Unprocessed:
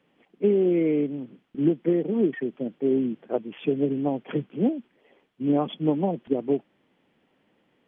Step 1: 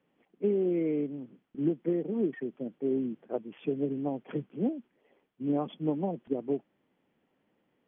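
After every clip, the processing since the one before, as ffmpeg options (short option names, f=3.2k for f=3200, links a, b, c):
-af "highshelf=f=3.1k:g=-9,volume=-6.5dB"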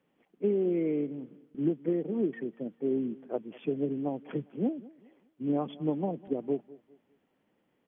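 -filter_complex "[0:a]asplit=2[a][b];[b]adelay=201,lowpass=f=2k:p=1,volume=-20.5dB,asplit=2[c][d];[d]adelay=201,lowpass=f=2k:p=1,volume=0.34,asplit=2[e][f];[f]adelay=201,lowpass=f=2k:p=1,volume=0.34[g];[a][c][e][g]amix=inputs=4:normalize=0"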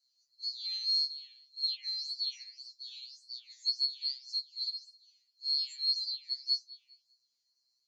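-af "afftfilt=real='real(if(lt(b,736),b+184*(1-2*mod(floor(b/184),2)),b),0)':imag='imag(if(lt(b,736),b+184*(1-2*mod(floor(b/184),2)),b),0)':win_size=2048:overlap=0.75,flanger=delay=4.8:depth=8.2:regen=89:speed=1.8:shape=sinusoidal,afftfilt=real='re*2.45*eq(mod(b,6),0)':imag='im*2.45*eq(mod(b,6),0)':win_size=2048:overlap=0.75,volume=2dB"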